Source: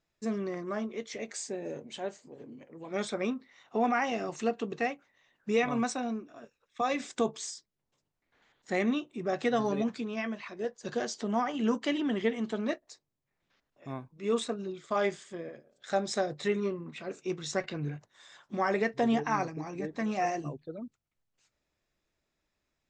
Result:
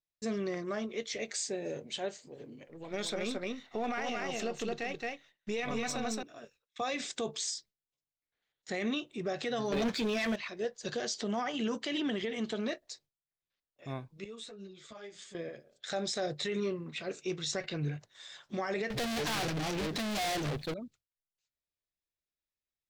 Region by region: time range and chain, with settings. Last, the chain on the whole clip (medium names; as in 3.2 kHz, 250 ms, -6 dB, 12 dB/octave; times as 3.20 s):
2.67–6.23 s: partial rectifier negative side -3 dB + delay 221 ms -4.5 dB
9.72–10.36 s: high-pass 180 Hz 6 dB/octave + band-stop 2.8 kHz, Q 15 + waveshaping leveller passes 3
14.24–15.35 s: compression 4:1, threshold -45 dBFS + three-phase chorus
18.90–20.74 s: peaking EQ 210 Hz +7 dB 0.21 oct + hard clipper -32.5 dBFS + waveshaping leveller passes 5
whole clip: gate with hold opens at -55 dBFS; graphic EQ 250/1000/4000 Hz -6/-6/+5 dB; peak limiter -28 dBFS; trim +3 dB